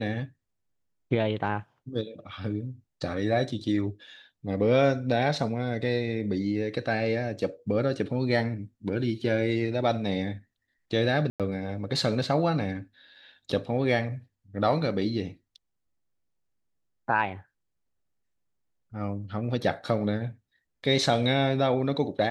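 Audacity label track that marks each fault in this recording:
11.300000	11.400000	dropout 97 ms

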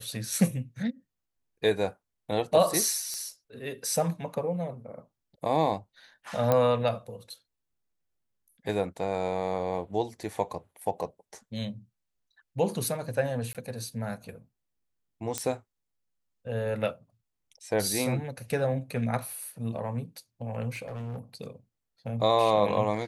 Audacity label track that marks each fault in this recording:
3.140000	3.140000	pop -20 dBFS
6.520000	6.520000	pop -11 dBFS
13.530000	13.550000	dropout 17 ms
15.380000	15.380000	pop -13 dBFS
20.730000	21.190000	clipped -33 dBFS

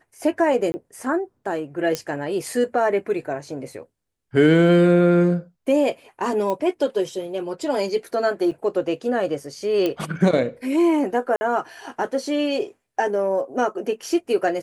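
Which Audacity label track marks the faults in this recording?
0.720000	0.740000	dropout 20 ms
1.950000	1.950000	pop -9 dBFS
6.500000	6.500000	pop -14 dBFS
8.510000	8.520000	dropout 5.8 ms
9.860000	9.860000	pop -11 dBFS
11.360000	11.410000	dropout 50 ms

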